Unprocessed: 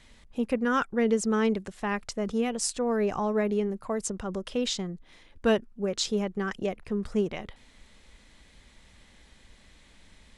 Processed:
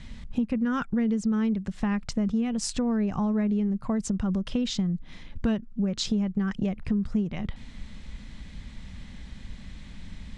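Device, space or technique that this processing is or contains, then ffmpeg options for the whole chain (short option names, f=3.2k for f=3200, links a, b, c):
jukebox: -af "lowpass=6.6k,lowshelf=f=280:t=q:w=1.5:g=10,acompressor=threshold=-31dB:ratio=5,volume=6dB"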